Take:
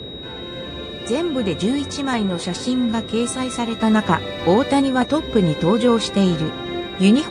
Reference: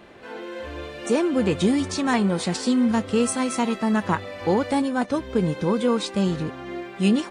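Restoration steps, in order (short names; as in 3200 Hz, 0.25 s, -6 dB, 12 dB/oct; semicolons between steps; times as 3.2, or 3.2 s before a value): notch 3800 Hz, Q 30; noise print and reduce 6 dB; gain correction -5.5 dB, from 3.8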